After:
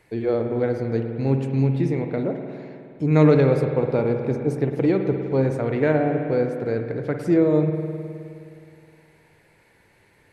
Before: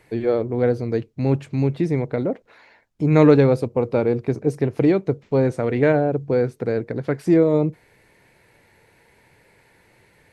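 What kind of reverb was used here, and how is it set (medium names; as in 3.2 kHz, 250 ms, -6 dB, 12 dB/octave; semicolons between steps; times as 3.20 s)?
spring tank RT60 2.5 s, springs 52 ms, chirp 70 ms, DRR 4.5 dB; trim -3 dB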